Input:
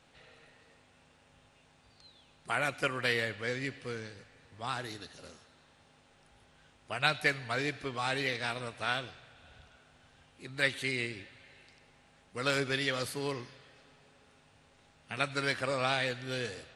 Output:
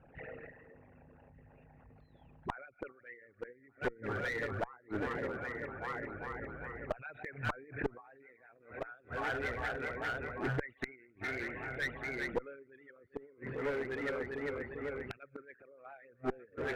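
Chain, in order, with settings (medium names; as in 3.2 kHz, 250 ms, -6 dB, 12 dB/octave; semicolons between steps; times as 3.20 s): resonances exaggerated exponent 3; on a send: multi-head delay 398 ms, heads first and third, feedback 67%, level -18.5 dB; on the sum: vibrato 6.8 Hz 35 cents; steep low-pass 2.3 kHz 36 dB/octave; inverted gate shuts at -30 dBFS, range -30 dB; one-sided clip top -46.5 dBFS; gate -59 dBFS, range -8 dB; 6.99–8.89 s: swell ahead of each attack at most 150 dB/s; trim +12 dB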